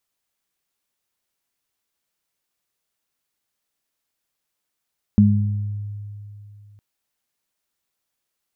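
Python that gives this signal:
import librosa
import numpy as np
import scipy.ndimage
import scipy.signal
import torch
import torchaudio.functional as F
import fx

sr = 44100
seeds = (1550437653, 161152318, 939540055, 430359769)

y = fx.additive(sr, length_s=1.61, hz=103.0, level_db=-13.5, upper_db=(5,), decay_s=2.94, upper_decays_s=(0.83,))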